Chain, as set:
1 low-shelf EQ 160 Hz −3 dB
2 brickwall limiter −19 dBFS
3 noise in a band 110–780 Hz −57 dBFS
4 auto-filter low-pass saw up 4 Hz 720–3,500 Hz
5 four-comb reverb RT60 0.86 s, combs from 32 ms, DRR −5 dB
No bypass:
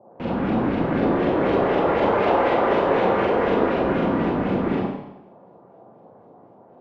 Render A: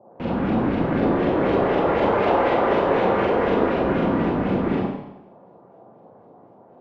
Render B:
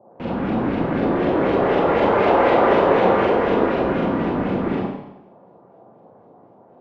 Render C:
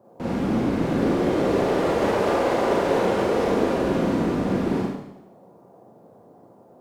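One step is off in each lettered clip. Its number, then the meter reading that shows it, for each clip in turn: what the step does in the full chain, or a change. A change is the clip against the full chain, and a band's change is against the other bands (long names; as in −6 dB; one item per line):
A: 1, 125 Hz band +1.5 dB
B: 2, average gain reduction 1.5 dB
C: 4, change in momentary loudness spread −1 LU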